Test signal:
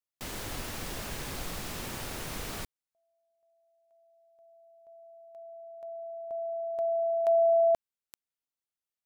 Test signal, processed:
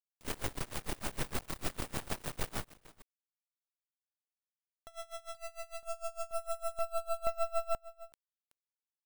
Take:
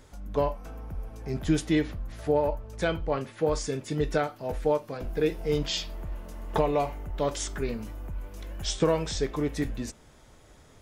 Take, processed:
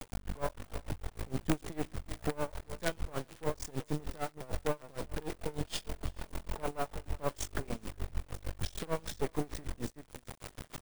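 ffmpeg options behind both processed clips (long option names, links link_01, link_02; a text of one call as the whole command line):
ffmpeg -i in.wav -filter_complex "[0:a]highshelf=frequency=2400:gain=-6.5,acompressor=threshold=-45dB:ratio=2.5:attack=78:release=357:knee=6:detection=rms,acrusher=bits=6:dc=4:mix=0:aa=0.000001,asoftclip=type=tanh:threshold=-30dB,aexciter=amount=1.1:drive=4.1:freq=8600,asplit=2[link_01][link_02];[link_02]aecho=0:1:375:0.141[link_03];[link_01][link_03]amix=inputs=2:normalize=0,aeval=exprs='val(0)*pow(10,-24*(0.5-0.5*cos(2*PI*6.6*n/s))/20)':channel_layout=same,volume=14dB" out.wav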